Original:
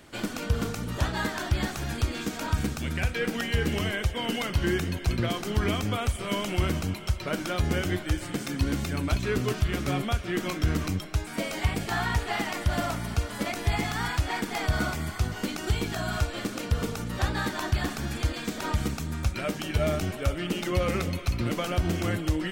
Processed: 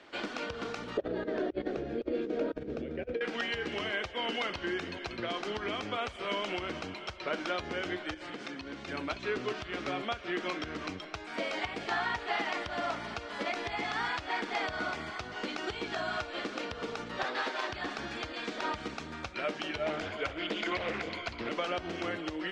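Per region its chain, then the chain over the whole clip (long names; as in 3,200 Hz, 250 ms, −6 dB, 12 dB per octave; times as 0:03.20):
0:00.97–0:03.21: low-pass filter 1,600 Hz 6 dB per octave + low shelf with overshoot 670 Hz +10.5 dB, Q 3 + compressor whose output falls as the input rises −21 dBFS, ratio −0.5
0:08.14–0:08.88: high-shelf EQ 12,000 Hz −10 dB + downward compressor 4 to 1, threshold −33 dBFS
0:17.23–0:17.69: lower of the sound and its delayed copy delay 7.8 ms + high-pass filter 260 Hz
0:19.86–0:21.49: EQ curve with evenly spaced ripples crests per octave 1.8, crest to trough 14 dB + highs frequency-modulated by the lows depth 0.55 ms
whole clip: low-pass filter 8,300 Hz 12 dB per octave; downward compressor, threshold −26 dBFS; three-way crossover with the lows and the highs turned down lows −19 dB, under 290 Hz, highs −23 dB, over 5,200 Hz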